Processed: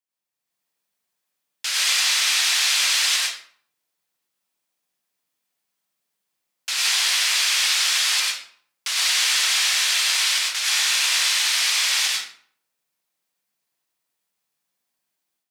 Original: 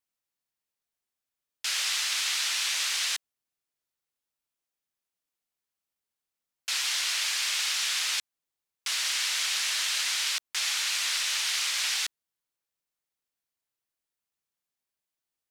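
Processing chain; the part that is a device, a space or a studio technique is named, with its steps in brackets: far laptop microphone (reverb RT60 0.55 s, pre-delay 91 ms, DRR -3 dB; HPF 160 Hz 12 dB/oct; AGC gain up to 9 dB); gain -4 dB

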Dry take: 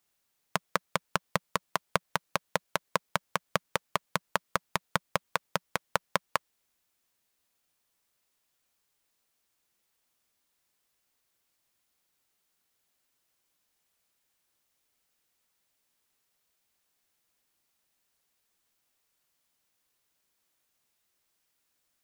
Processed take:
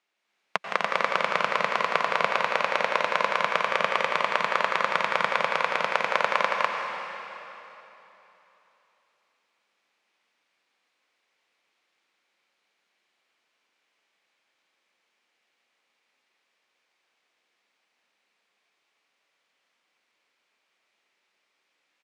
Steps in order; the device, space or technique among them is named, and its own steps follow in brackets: station announcement (BPF 330–3700 Hz; bell 2300 Hz +5 dB 0.52 oct; loudspeakers at several distances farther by 57 m -6 dB, 86 m -4 dB, 99 m -1 dB; reverb RT60 3.3 s, pre-delay 85 ms, DRR 2.5 dB); gain +2.5 dB

